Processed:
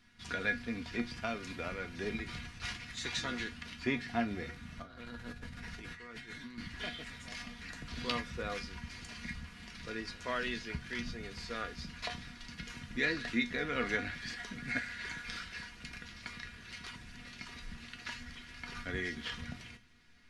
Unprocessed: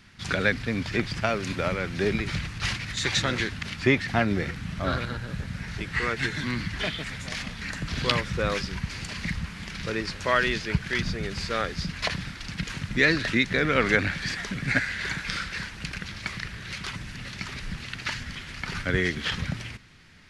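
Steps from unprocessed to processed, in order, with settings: 4.82–6.58 s: compressor with a negative ratio -36 dBFS, ratio -1; feedback comb 240 Hz, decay 0.21 s, harmonics all, mix 80%; on a send: reverberation RT60 0.30 s, pre-delay 3 ms, DRR 12 dB; on the sum: trim -2.5 dB

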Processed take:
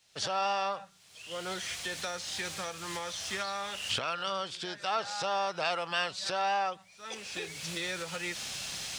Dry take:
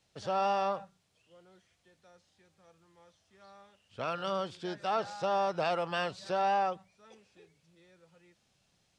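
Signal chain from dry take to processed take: recorder AGC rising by 38 dB/s; tilt shelf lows -7.5 dB

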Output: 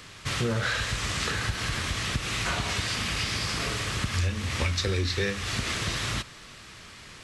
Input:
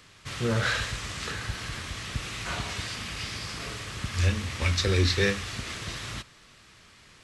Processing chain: compression 5:1, threshold -33 dBFS, peak gain reduction 13.5 dB; trim +8 dB

